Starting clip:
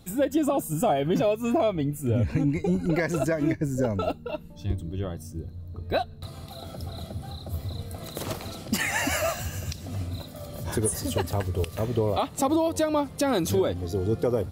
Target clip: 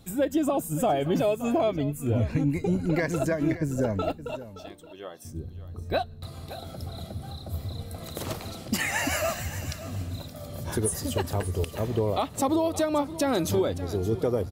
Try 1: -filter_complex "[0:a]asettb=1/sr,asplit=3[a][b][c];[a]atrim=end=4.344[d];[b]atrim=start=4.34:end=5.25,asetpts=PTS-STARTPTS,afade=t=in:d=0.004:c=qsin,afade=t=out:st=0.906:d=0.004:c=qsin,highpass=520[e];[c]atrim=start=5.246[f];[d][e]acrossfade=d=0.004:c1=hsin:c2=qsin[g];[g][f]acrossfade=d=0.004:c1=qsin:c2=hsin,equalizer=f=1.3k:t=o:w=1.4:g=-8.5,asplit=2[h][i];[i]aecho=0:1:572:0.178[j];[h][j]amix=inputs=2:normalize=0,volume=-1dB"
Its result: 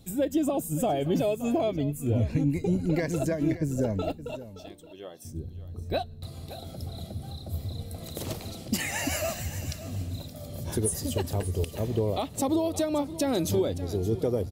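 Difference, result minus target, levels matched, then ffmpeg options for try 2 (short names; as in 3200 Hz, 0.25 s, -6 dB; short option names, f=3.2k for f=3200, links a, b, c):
1000 Hz band -3.0 dB
-filter_complex "[0:a]asettb=1/sr,asplit=3[a][b][c];[a]atrim=end=4.344[d];[b]atrim=start=4.34:end=5.25,asetpts=PTS-STARTPTS,afade=t=in:d=0.004:c=qsin,afade=t=out:st=0.906:d=0.004:c=qsin,highpass=520[e];[c]atrim=start=5.246[f];[d][e]acrossfade=d=0.004:c1=hsin:c2=qsin[g];[g][f]acrossfade=d=0.004:c1=qsin:c2=hsin,asplit=2[h][i];[i]aecho=0:1:572:0.178[j];[h][j]amix=inputs=2:normalize=0,volume=-1dB"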